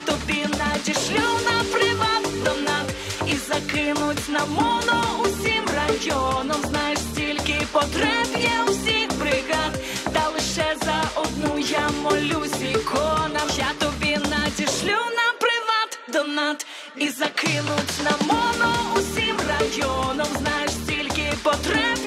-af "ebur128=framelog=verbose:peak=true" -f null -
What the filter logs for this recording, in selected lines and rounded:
Integrated loudness:
  I:         -22.1 LUFS
  Threshold: -32.1 LUFS
Loudness range:
  LRA:         1.0 LU
  Threshold: -42.2 LUFS
  LRA low:   -22.6 LUFS
  LRA high:  -21.7 LUFS
True peak:
  Peak:       -6.3 dBFS